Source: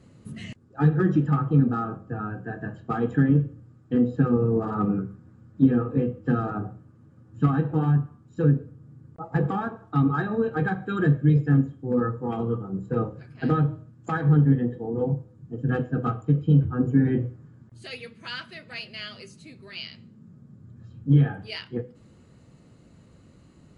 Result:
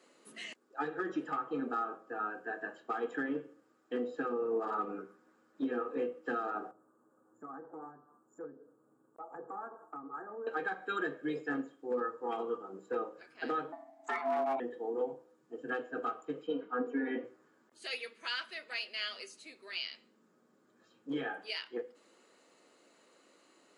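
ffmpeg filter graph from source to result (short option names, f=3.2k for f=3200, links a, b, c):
-filter_complex "[0:a]asettb=1/sr,asplit=3[a][b][c];[a]atrim=end=6.714[d];[b]atrim=start=6.71:end=10.47,asetpts=PTS-STARTPTS,afade=t=in:d=0.004:c=qsin,afade=t=out:st=3.756:d=0.004:c=qsin,asuperstop=centerf=3300:order=8:qfactor=0.56,equalizer=f=110:t=o:w=0.58:g=5.5,acompressor=threshold=-42dB:ratio=2:attack=3.2:release=140:knee=1:detection=peak[e];[c]atrim=start=10.466[f];[d][e]acrossfade=d=0.004:c1=hsin:c2=qsin[g];[g][f]acrossfade=d=0.004:c1=qsin:c2=hsin,asettb=1/sr,asplit=3[h][i][j];[h]atrim=end=13.724[k];[i]atrim=start=13.72:end=14.6,asetpts=PTS-STARTPTS,afade=t=in:d=0.004:c=qsin,afade=t=out:st=0.876:d=0.004:c=qsin,asoftclip=type=hard:threshold=-19dB,afreqshift=66,aeval=exprs='val(0)*sin(2*PI*470*n/s)':c=same[l];[j]atrim=start=14.596[m];[k][l]acrossfade=d=0.004:c1=hsin:c2=qsin[n];[n][m]acrossfade=d=0.004:c1=qsin:c2=hsin,asettb=1/sr,asplit=3[o][p][q];[o]atrim=end=16.474[r];[p]atrim=start=16.47:end=17.24,asetpts=PTS-STARTPTS,afade=t=in:d=0.004:c=qsin,afade=t=out:st=0.766:d=0.004:c=qsin,highpass=210,lowpass=4k,aecho=1:1:4.2:0.9,atrim=end_sample=33957[s];[q]atrim=start=17.236[t];[r][s]acrossfade=d=0.004:c1=hsin:c2=qsin[u];[u][t]acrossfade=d=0.004:c1=qsin:c2=hsin,highpass=f=320:w=0.5412,highpass=f=320:w=1.3066,lowshelf=f=420:g=-9.5,alimiter=level_in=1dB:limit=-24dB:level=0:latency=1:release=279,volume=-1dB"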